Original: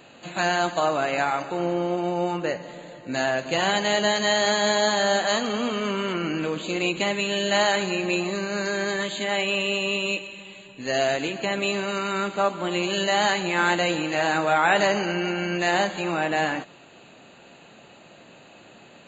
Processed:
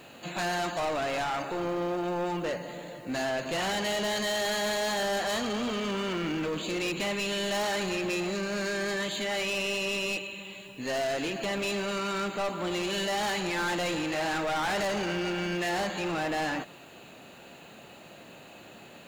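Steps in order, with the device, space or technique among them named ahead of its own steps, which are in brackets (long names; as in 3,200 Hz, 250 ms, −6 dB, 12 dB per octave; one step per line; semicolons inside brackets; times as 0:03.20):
open-reel tape (soft clipping −27 dBFS, distortion −7 dB; parametric band 62 Hz +4.5 dB; white noise bed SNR 34 dB)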